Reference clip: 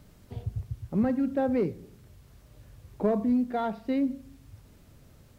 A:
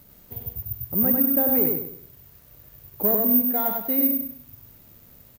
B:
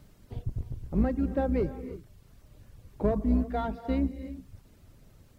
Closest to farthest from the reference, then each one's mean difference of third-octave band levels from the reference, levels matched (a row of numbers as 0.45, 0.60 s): B, A; 2.5, 5.5 dB